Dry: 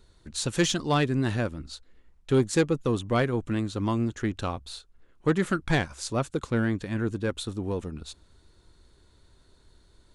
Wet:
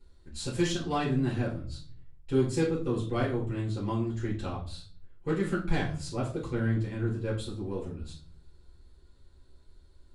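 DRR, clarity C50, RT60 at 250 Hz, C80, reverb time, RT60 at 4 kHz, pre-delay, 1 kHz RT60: -7.5 dB, 7.5 dB, 0.80 s, 13.0 dB, 0.45 s, 0.35 s, 3 ms, 0.40 s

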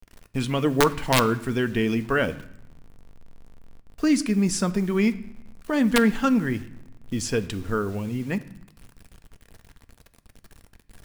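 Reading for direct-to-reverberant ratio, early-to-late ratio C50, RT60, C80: 10.5 dB, 17.0 dB, 0.75 s, 19.5 dB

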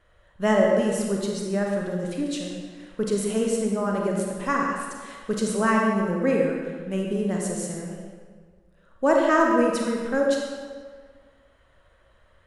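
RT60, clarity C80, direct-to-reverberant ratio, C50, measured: 1.7 s, 2.5 dB, -1.0 dB, 0.5 dB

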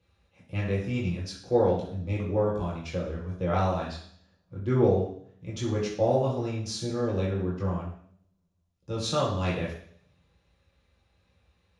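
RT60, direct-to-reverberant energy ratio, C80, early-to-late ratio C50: 0.60 s, -6.0 dB, 7.5 dB, 4.0 dB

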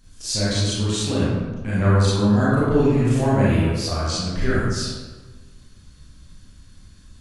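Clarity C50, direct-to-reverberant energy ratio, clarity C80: -3.5 dB, -9.5 dB, 0.0 dB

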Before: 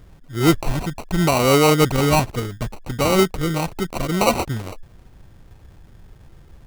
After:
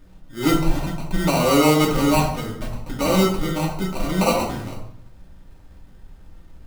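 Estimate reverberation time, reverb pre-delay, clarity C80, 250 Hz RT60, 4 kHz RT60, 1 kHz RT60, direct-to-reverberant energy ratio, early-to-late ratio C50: 0.65 s, 3 ms, 8.5 dB, 0.85 s, 0.50 s, 0.65 s, -3.0 dB, 5.5 dB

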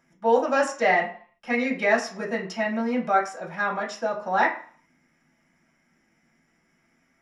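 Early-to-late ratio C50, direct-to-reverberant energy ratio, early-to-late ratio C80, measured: 9.5 dB, -4.0 dB, 13.5 dB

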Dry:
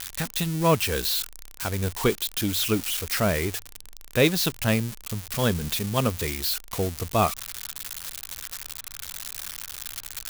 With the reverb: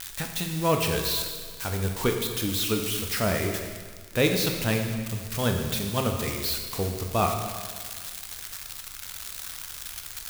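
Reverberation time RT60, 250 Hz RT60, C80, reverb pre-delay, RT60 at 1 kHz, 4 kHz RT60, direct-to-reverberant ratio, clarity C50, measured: 1.7 s, 1.7 s, 6.5 dB, 7 ms, 1.7 s, 1.6 s, 3.0 dB, 5.0 dB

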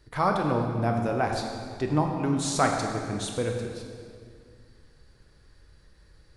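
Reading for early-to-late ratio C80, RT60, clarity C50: 5.0 dB, 2.1 s, 4.0 dB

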